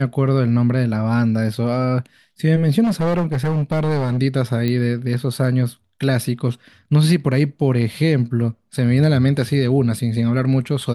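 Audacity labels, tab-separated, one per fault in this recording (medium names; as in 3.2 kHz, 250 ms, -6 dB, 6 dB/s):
2.830000	4.190000	clipped -15.5 dBFS
4.680000	4.680000	pop -11 dBFS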